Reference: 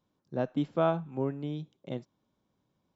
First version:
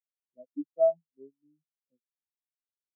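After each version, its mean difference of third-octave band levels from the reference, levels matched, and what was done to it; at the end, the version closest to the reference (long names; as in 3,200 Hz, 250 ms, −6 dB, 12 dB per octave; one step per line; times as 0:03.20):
16.5 dB: high-pass filter 170 Hz 6 dB per octave
every bin expanded away from the loudest bin 4 to 1
level −1 dB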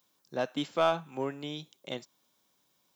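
7.0 dB: spectral tilt +4.5 dB per octave
in parallel at −3.5 dB: gain into a clipping stage and back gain 28 dB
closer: second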